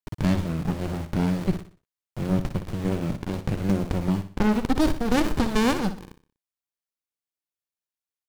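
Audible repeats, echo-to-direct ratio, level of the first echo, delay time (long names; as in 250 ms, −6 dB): 3, −10.5 dB, −11.0 dB, 61 ms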